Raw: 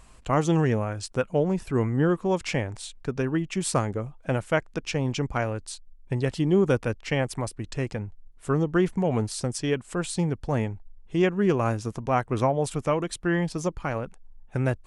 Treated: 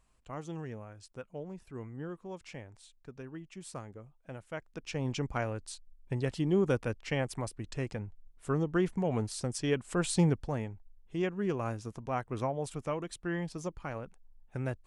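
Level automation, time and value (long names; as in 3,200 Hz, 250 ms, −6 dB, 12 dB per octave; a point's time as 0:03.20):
0:04.45 −18.5 dB
0:05.07 −6.5 dB
0:09.42 −6.5 dB
0:10.28 +0.5 dB
0:10.58 −10 dB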